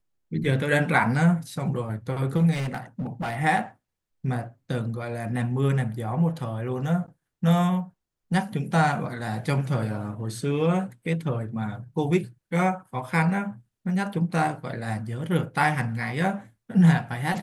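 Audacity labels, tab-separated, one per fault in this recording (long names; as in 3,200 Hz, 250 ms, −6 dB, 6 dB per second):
2.510000	3.370000	clipping −25.5 dBFS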